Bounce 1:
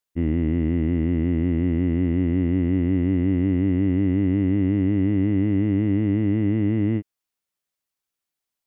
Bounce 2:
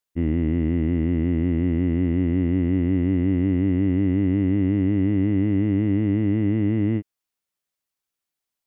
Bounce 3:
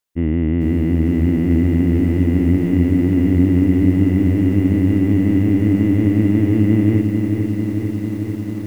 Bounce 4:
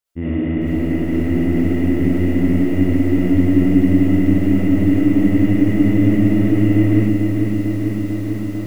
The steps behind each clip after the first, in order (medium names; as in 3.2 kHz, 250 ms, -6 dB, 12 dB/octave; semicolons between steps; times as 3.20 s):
no audible change
level rider gain up to 16.5 dB; peak limiter -11.5 dBFS, peak gain reduction 10 dB; bit-crushed delay 446 ms, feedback 80%, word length 8-bit, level -6 dB; trim +2.5 dB
reverberation RT60 0.35 s, pre-delay 20 ms, DRR -7.5 dB; trim -5.5 dB